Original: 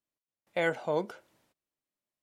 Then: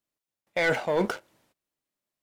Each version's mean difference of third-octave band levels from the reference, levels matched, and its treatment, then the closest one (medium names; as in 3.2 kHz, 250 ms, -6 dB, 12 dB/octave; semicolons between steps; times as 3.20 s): 5.5 dB: dynamic bell 2.1 kHz, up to +7 dB, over -47 dBFS, Q 1.5; waveshaping leveller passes 2; reverse; compression 6:1, threshold -30 dBFS, peak gain reduction 11.5 dB; reverse; trim +7.5 dB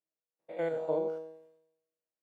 7.5 dB: spectrogram pixelated in time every 100 ms; peaking EQ 510 Hz +14 dB 2.3 oct; feedback comb 160 Hz, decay 0.84 s, harmonics all, mix 90%; trim +2 dB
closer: first